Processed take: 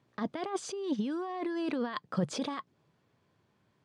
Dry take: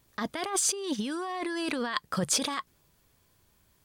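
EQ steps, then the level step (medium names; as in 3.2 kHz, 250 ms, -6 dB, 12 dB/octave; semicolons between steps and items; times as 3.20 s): high-pass 110 Hz 24 dB/octave; dynamic bell 1.7 kHz, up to -5 dB, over -46 dBFS, Q 0.73; tape spacing loss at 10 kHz 26 dB; +1.0 dB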